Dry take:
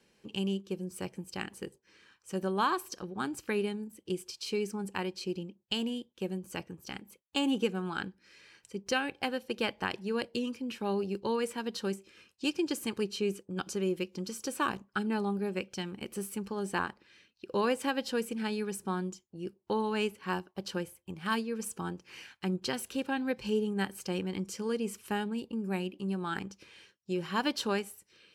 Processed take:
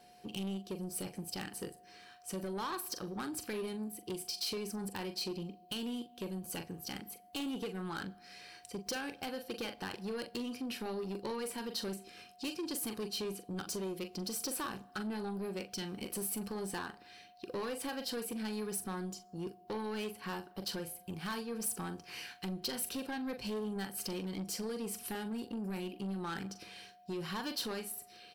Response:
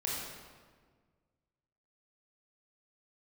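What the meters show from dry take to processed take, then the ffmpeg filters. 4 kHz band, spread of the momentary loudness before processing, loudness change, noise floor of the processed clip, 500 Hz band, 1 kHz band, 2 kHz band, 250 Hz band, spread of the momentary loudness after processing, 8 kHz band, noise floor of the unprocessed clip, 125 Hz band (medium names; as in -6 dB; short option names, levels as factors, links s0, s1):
-2.5 dB, 10 LU, -5.5 dB, -60 dBFS, -7.0 dB, -8.0 dB, -7.5 dB, -5.5 dB, 7 LU, +2.5 dB, -72 dBFS, -5.0 dB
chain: -filter_complex "[0:a]acompressor=threshold=0.0158:ratio=3,aeval=exprs='val(0)+0.000794*sin(2*PI*720*n/s)':c=same,asplit=2[s0][s1];[s1]adelay=42,volume=0.282[s2];[s0][s2]amix=inputs=2:normalize=0,asoftclip=type=tanh:threshold=0.0158,aexciter=amount=1.9:drive=2.5:freq=3900,asplit=2[s3][s4];[1:a]atrim=start_sample=2205,asetrate=61740,aresample=44100[s5];[s4][s5]afir=irnorm=-1:irlink=0,volume=0.0794[s6];[s3][s6]amix=inputs=2:normalize=0,volume=1.26"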